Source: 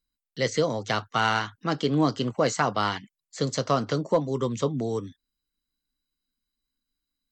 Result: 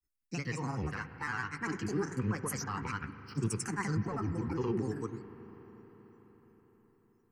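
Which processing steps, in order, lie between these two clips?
brickwall limiter −20.5 dBFS, peak gain reduction 10.5 dB
granular cloud, pitch spread up and down by 7 semitones
phase shifter 0.3 Hz, delay 3.1 ms, feedback 32%
phaser with its sweep stopped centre 1,500 Hz, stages 4
on a send: convolution reverb RT60 5.4 s, pre-delay 39 ms, DRR 11 dB

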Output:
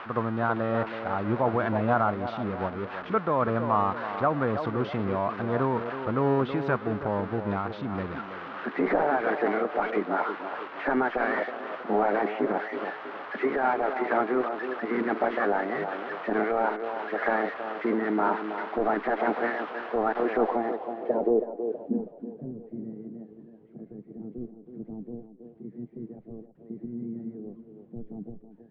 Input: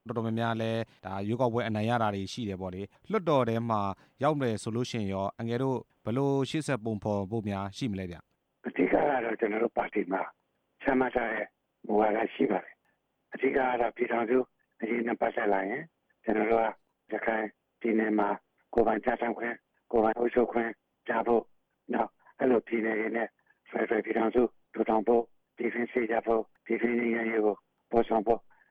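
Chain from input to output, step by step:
spike at every zero crossing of −18 dBFS
low-pass filter 4,300 Hz 24 dB per octave
brickwall limiter −19 dBFS, peak gain reduction 7 dB
low-pass filter sweep 1,300 Hz → 140 Hz, 0:20.28–0:22.36
feedback echo with a band-pass in the loop 323 ms, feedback 49%, band-pass 500 Hz, level −7 dB
amplitude modulation by smooth noise, depth 55%
level +4.5 dB

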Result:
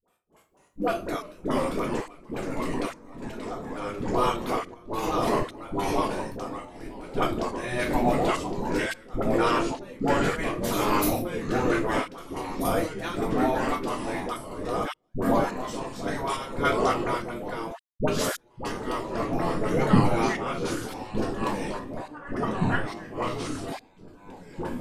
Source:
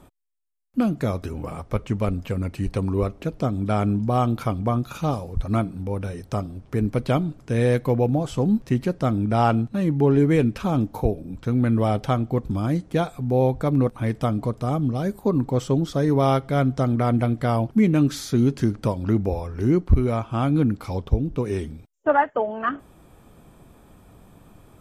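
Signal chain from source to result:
0:02.84–0:03.74: output level in coarse steps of 13 dB
0:10.53–0:11.16: RIAA equalisation recording
gate on every frequency bin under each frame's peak −10 dB weak
rectangular room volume 220 cubic metres, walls furnished, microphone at 1.8 metres
delay with pitch and tempo change per echo 246 ms, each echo −2 semitones, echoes 3
sample-and-hold tremolo, depth 100%
all-pass dispersion highs, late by 80 ms, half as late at 580 Hz
0:04.74–0:05.23: expander for the loud parts 1.5 to 1, over −39 dBFS
level +4.5 dB

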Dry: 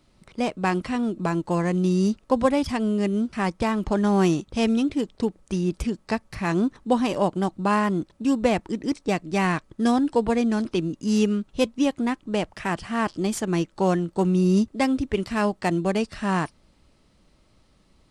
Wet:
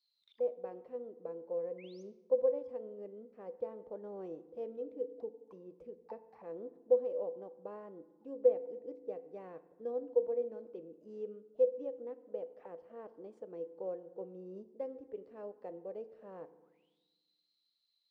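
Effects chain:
sound drawn into the spectrogram rise, 0:01.78–0:02.03, 2,000–6,800 Hz −18 dBFS
envelope filter 500–4,400 Hz, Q 22, down, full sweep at −27 dBFS
feedback delay network reverb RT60 1.2 s, low-frequency decay 1.5×, high-frequency decay 0.6×, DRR 12.5 dB

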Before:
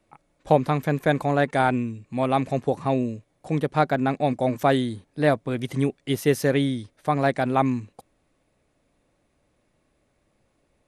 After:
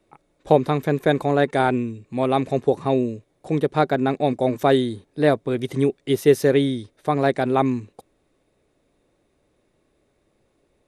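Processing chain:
hollow resonant body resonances 390/3,700 Hz, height 8 dB, ringing for 20 ms

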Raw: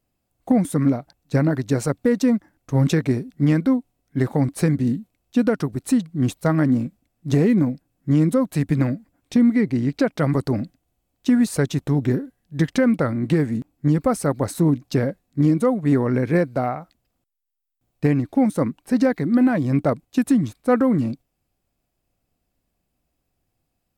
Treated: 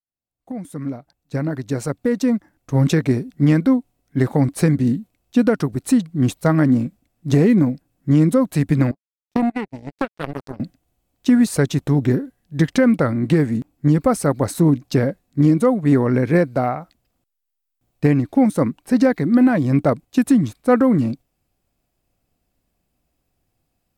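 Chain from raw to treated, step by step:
fade in at the beginning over 3.21 s
0:08.91–0:10.60: power curve on the samples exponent 3
level +3 dB

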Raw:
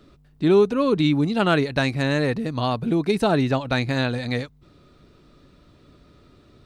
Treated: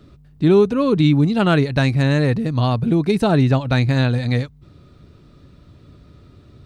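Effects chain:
parametric band 97 Hz +10.5 dB 1.9 octaves
level +1 dB

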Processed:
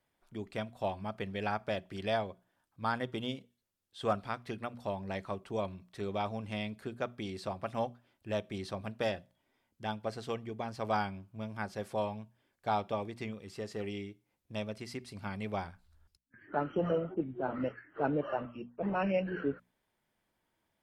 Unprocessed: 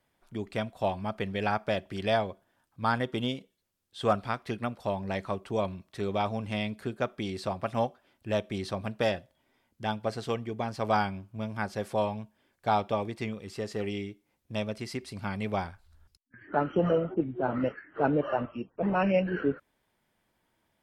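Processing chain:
mains-hum notches 60/120/180/240 Hz
level −5.5 dB

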